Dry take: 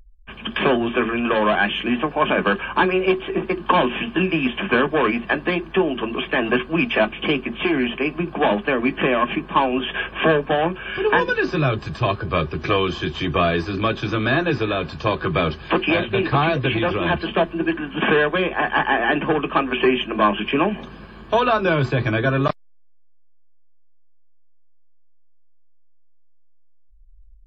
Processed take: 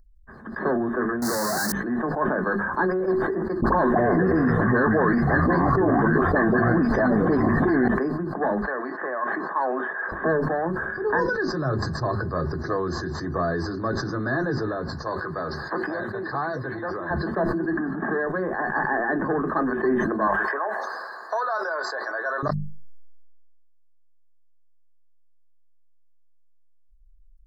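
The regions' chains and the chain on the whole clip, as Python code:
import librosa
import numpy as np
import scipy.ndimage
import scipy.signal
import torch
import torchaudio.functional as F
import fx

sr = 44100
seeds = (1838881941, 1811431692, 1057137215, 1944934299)

y = fx.chain(x, sr, fx.clip_1bit(),
    fx.highpass(hz=130.0, slope=12),
    fx.bass_treble(bass_db=4, treble_db=4), at=(1.22, 1.72))
y = fx.chain(y, sr, fx.dispersion(late='highs', ms=46.0, hz=1200.0),
    fx.echo_pitch(ms=186, semitones=-7, count=2, db_per_echo=-6.0),
    fx.env_flatten(amount_pct=100), at=(3.62, 7.88))
y = fx.chain(y, sr, fx.bandpass_edges(low_hz=610.0, high_hz=4400.0),
    fx.band_squash(depth_pct=40), at=(8.62, 10.12))
y = fx.chain(y, sr, fx.highpass(hz=42.0, slope=12),
    fx.low_shelf(hz=370.0, db=-11.5), at=(15.02, 17.11))
y = fx.chain(y, sr, fx.high_shelf(hz=3800.0, db=-9.0),
    fx.notch_comb(f0_hz=500.0), at=(17.7, 18.27))
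y = fx.chain(y, sr, fx.highpass(hz=610.0, slope=24),
    fx.band_squash(depth_pct=70), at=(20.27, 22.43))
y = scipy.signal.sosfilt(scipy.signal.ellip(3, 1.0, 40, [1800.0, 4300.0], 'bandstop', fs=sr, output='sos'), y)
y = fx.hum_notches(y, sr, base_hz=50, count=4)
y = fx.sustainer(y, sr, db_per_s=24.0)
y = y * 10.0 ** (-6.0 / 20.0)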